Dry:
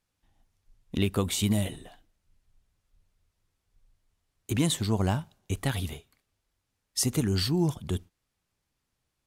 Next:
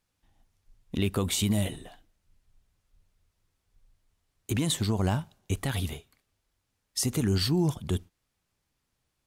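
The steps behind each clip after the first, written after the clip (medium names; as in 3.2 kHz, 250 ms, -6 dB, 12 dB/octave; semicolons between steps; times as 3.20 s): peak limiter -19 dBFS, peak gain reduction 6.5 dB; trim +1.5 dB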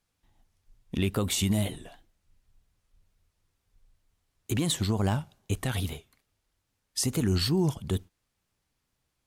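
wow and flutter 87 cents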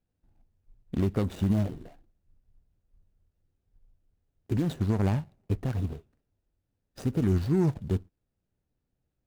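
median filter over 41 samples; trim +1.5 dB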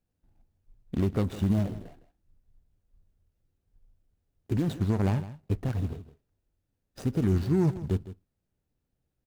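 delay 160 ms -15 dB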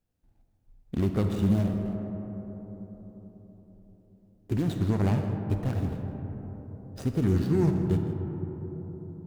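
reverberation RT60 4.5 s, pre-delay 5 ms, DRR 4.5 dB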